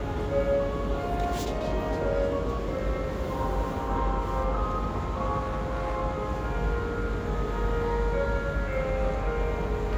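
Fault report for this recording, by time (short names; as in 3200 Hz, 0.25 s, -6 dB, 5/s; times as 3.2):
5.39–5.97 clipped -25.5 dBFS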